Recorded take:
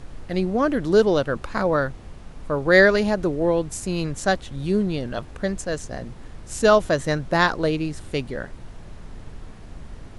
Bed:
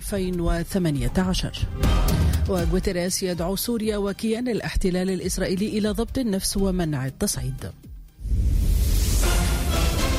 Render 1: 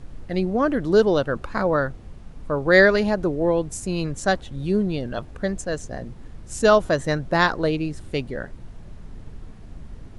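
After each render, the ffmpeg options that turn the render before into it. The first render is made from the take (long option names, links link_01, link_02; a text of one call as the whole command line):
ffmpeg -i in.wav -af "afftdn=noise_reduction=6:noise_floor=-41" out.wav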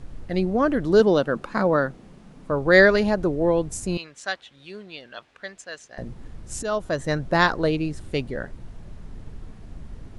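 ffmpeg -i in.wav -filter_complex "[0:a]asettb=1/sr,asplit=3[link_01][link_02][link_03];[link_01]atrim=end=1.004[link_04];[link_02]atrim=start=1:end=2.51,asetpts=PTS-STARTPTS,afade=type=in:duration=0.004:curve=qsin,afade=type=out:start_time=1.506:duration=0.004:curve=qsin,lowshelf=frequency=120:width_type=q:width=1.5:gain=-12.5[link_05];[link_03]atrim=start=2.506[link_06];[link_04][link_05]acrossfade=duration=0.004:curve1=hsin:curve2=qsin[link_07];[link_07][link_06]acrossfade=duration=0.004:curve1=qsin:curve2=hsin,asettb=1/sr,asplit=3[link_08][link_09][link_10];[link_08]atrim=end=3.974[link_11];[link_09]atrim=start=3.97:end=5.98,asetpts=PTS-STARTPTS,afade=type=in:duration=0.004:curve=qsin,afade=type=out:start_time=2.006:duration=0.004:curve=qsin,bandpass=frequency=2700:width_type=q:width=0.93[link_12];[link_10]atrim=start=5.976[link_13];[link_11][link_12]acrossfade=duration=0.004:curve1=hsin:curve2=qsin[link_14];[link_14][link_13]acrossfade=duration=0.004:curve1=qsin:curve2=hsin,asplit=2[link_15][link_16];[link_15]atrim=end=6.63,asetpts=PTS-STARTPTS,afade=type=out:start_time=6.626:duration=0.004:curve=hsin:silence=0.177828[link_17];[link_16]atrim=start=6.63,asetpts=PTS-STARTPTS,afade=type=in:duration=0.59:silence=0.177828[link_18];[link_17][link_18]concat=n=2:v=0:a=1" out.wav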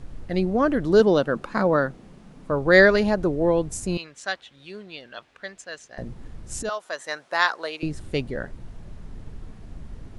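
ffmpeg -i in.wav -filter_complex "[0:a]asettb=1/sr,asplit=3[link_01][link_02][link_03];[link_01]atrim=end=6.694[link_04];[link_02]atrim=start=6.69:end=7.83,asetpts=PTS-STARTPTS,afade=type=in:duration=0.004:curve=qsin,afade=type=out:start_time=1.136:duration=0.004:curve=qsin,highpass=860[link_05];[link_03]atrim=start=7.826[link_06];[link_04][link_05]acrossfade=duration=0.004:curve1=hsin:curve2=qsin[link_07];[link_07][link_06]acrossfade=duration=0.004:curve1=qsin:curve2=hsin" out.wav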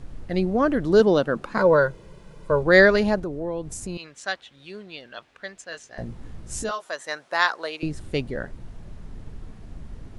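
ffmpeg -i in.wav -filter_complex "[0:a]asettb=1/sr,asplit=3[link_01][link_02][link_03];[link_01]atrim=end=1.584[link_04];[link_02]atrim=start=1.58:end=2.63,asetpts=PTS-STARTPTS,afade=type=in:duration=0.004:curve=qsin,afade=type=out:start_time=1.046:duration=0.004:curve=qsin,aecho=1:1:2:0.87,atrim=end_sample=46305[link_05];[link_03]atrim=start=2.626[link_06];[link_04][link_05]acrossfade=duration=0.004:curve1=hsin:curve2=qsin[link_07];[link_07][link_06]acrossfade=duration=0.004:curve1=qsin:curve2=hsin,asettb=1/sr,asplit=3[link_08][link_09][link_10];[link_08]atrim=end=3.194[link_11];[link_09]atrim=start=3.19:end=4.16,asetpts=PTS-STARTPTS,afade=type=in:duration=0.004:curve=qsin,afade=type=out:start_time=0.966:duration=0.004:curve=qsin,acompressor=threshold=-32dB:ratio=2:attack=3.2:release=140:knee=1:detection=peak[link_12];[link_10]atrim=start=4.156[link_13];[link_11][link_12]acrossfade=duration=0.004:curve1=hsin:curve2=qsin[link_14];[link_14][link_13]acrossfade=duration=0.004:curve1=qsin:curve2=hsin,asettb=1/sr,asplit=3[link_15][link_16][link_17];[link_15]atrim=end=5.704[link_18];[link_16]atrim=start=5.7:end=6.91,asetpts=PTS-STARTPTS,afade=type=in:duration=0.004:curve=qsin,afade=type=out:start_time=1.206:duration=0.004:curve=qsin,asplit=2[link_19][link_20];[link_20]adelay=18,volume=-6dB[link_21];[link_19][link_21]amix=inputs=2:normalize=0,atrim=end_sample=53361[link_22];[link_17]atrim=start=6.906[link_23];[link_18][link_22]acrossfade=duration=0.004:curve1=hsin:curve2=qsin[link_24];[link_24][link_23]acrossfade=duration=0.004:curve1=qsin:curve2=hsin" out.wav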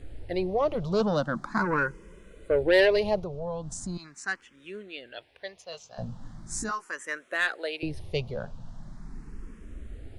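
ffmpeg -i in.wav -filter_complex "[0:a]asoftclip=type=tanh:threshold=-12.5dB,asplit=2[link_01][link_02];[link_02]afreqshift=0.4[link_03];[link_01][link_03]amix=inputs=2:normalize=1" out.wav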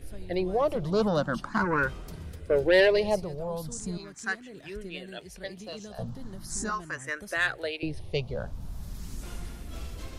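ffmpeg -i in.wav -i bed.wav -filter_complex "[1:a]volume=-21dB[link_01];[0:a][link_01]amix=inputs=2:normalize=0" out.wav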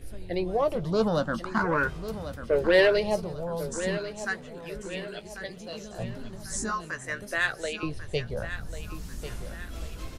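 ffmpeg -i in.wav -filter_complex "[0:a]asplit=2[link_01][link_02];[link_02]adelay=18,volume=-12dB[link_03];[link_01][link_03]amix=inputs=2:normalize=0,aecho=1:1:1093|2186|3279|4372:0.266|0.112|0.0469|0.0197" out.wav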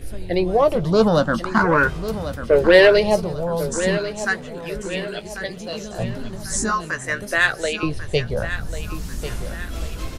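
ffmpeg -i in.wav -af "volume=9dB,alimiter=limit=-1dB:level=0:latency=1" out.wav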